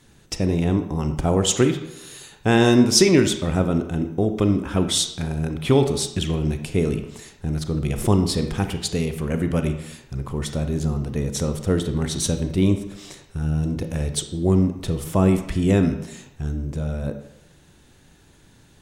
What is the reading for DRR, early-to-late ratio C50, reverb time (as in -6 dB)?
7.0 dB, 9.0 dB, 0.85 s